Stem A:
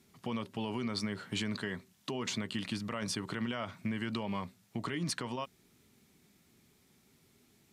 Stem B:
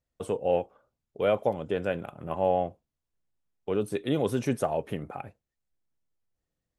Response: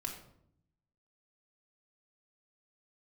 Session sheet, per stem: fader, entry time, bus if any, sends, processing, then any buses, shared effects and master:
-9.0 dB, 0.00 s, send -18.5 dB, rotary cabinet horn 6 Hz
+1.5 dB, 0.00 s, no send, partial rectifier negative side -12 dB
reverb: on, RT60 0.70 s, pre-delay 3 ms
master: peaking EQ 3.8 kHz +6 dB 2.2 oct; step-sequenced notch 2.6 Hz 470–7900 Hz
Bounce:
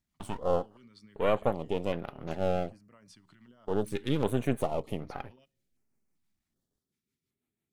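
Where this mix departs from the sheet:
stem A -9.0 dB -> -19.5 dB; master: missing peaking EQ 3.8 kHz +6 dB 2.2 oct

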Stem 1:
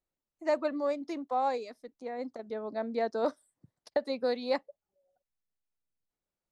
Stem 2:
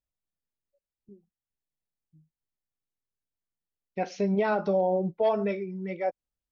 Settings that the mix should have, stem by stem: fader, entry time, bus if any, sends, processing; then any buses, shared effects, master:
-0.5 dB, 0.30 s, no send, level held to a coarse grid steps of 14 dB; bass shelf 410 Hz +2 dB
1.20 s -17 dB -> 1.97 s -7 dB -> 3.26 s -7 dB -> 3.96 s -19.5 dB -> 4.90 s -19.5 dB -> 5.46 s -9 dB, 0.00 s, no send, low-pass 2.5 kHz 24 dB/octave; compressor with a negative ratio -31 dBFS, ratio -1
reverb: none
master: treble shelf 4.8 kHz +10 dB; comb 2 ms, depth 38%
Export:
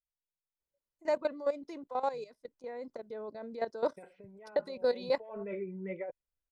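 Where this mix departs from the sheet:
stem 1: entry 0.30 s -> 0.60 s; master: missing treble shelf 4.8 kHz +10 dB

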